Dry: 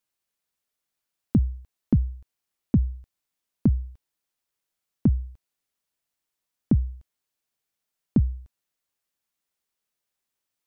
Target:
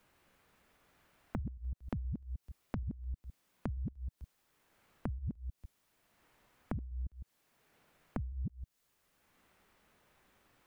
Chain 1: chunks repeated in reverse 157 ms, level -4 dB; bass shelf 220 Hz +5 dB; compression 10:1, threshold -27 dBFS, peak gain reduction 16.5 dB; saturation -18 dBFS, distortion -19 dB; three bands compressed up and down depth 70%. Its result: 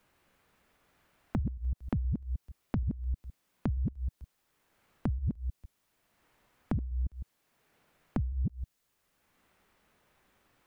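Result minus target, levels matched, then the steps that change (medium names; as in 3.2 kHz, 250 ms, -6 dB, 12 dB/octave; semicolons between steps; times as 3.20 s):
compression: peak gain reduction -7.5 dB
change: compression 10:1, threshold -35.5 dBFS, peak gain reduction 24 dB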